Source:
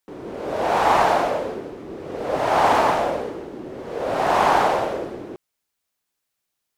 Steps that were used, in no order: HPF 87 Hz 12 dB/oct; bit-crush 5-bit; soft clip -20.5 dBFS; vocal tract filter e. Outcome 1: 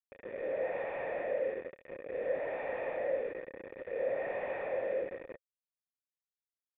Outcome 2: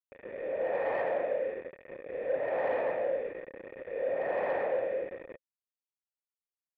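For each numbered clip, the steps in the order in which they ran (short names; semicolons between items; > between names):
HPF > soft clip > bit-crush > vocal tract filter; HPF > bit-crush > vocal tract filter > soft clip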